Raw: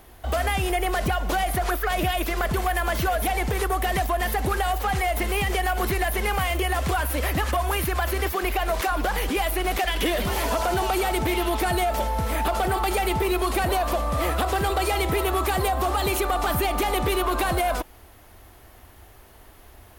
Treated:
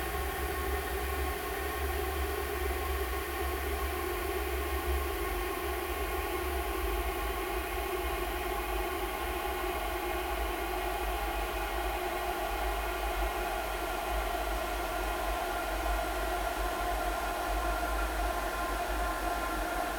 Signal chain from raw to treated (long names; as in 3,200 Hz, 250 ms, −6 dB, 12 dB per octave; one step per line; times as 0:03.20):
tape wow and flutter 140 cents
extreme stretch with random phases 24×, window 1.00 s, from 0:08.09
level −8.5 dB